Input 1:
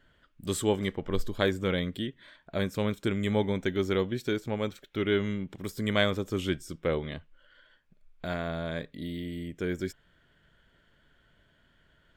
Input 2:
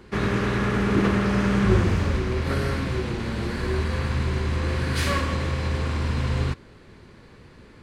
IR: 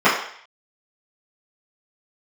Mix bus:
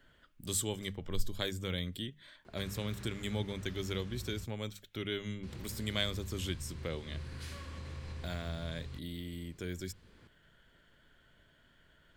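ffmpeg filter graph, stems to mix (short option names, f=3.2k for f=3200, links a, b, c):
-filter_complex "[0:a]highshelf=f=5.6k:g=4.5,bandreject=f=50:t=h:w=6,bandreject=f=100:t=h:w=6,bandreject=f=150:t=h:w=6,bandreject=f=200:t=h:w=6,volume=-0.5dB[a];[1:a]acompressor=threshold=-29dB:ratio=6,adelay=2450,volume=-10dB,asplit=3[b][c][d];[b]atrim=end=4.45,asetpts=PTS-STARTPTS,afade=t=out:st=4.446:d=0.004:c=hsin[e];[c]atrim=start=4.45:end=5.43,asetpts=PTS-STARTPTS,volume=0[f];[d]atrim=start=5.43,asetpts=PTS-STARTPTS,afade=t=in:d=0.004:c=hsin[g];[e][f][g]concat=n=3:v=0:a=1[h];[a][h]amix=inputs=2:normalize=0,acrossover=split=130|3000[i][j][k];[j]acompressor=threshold=-59dB:ratio=1.5[l];[i][l][k]amix=inputs=3:normalize=0"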